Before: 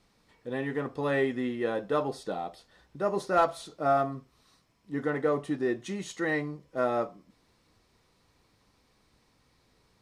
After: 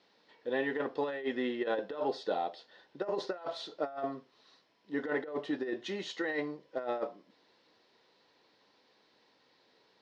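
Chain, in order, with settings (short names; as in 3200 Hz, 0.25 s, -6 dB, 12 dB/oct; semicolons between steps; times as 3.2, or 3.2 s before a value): speaker cabinet 410–4600 Hz, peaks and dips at 720 Hz -3 dB, 1200 Hz -9 dB, 2300 Hz -6 dB; negative-ratio compressor -34 dBFS, ratio -0.5; gain +1.5 dB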